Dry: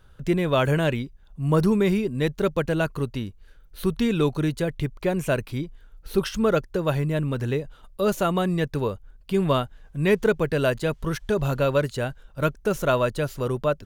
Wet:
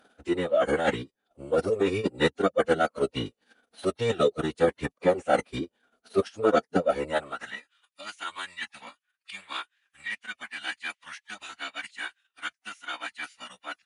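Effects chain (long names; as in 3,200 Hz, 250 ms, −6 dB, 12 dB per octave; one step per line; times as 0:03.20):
speech leveller within 5 dB 2 s
transient designer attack +8 dB, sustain −12 dB
reversed playback
downward compressor 12 to 1, threshold −25 dBFS, peak gain reduction 18 dB
reversed playback
high-pass filter sweep 460 Hz → 2,100 Hz, 0:06.97–0:07.71
phase-vocoder pitch shift with formants kept −12 semitones
level +3 dB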